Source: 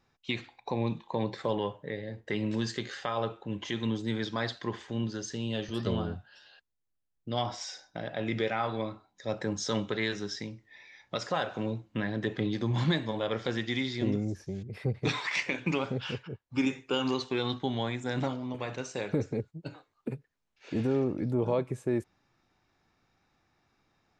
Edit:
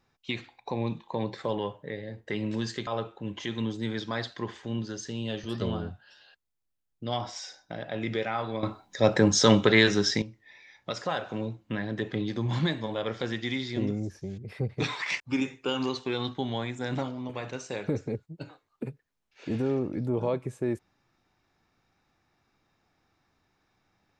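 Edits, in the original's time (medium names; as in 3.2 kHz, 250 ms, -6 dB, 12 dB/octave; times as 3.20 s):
2.87–3.12 s: delete
8.88–10.47 s: gain +11.5 dB
15.45–16.45 s: delete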